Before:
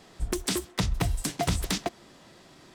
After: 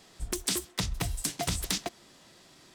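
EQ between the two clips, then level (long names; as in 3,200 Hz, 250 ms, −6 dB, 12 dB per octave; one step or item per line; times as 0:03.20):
high-shelf EQ 2,600 Hz +8.5 dB
−6.0 dB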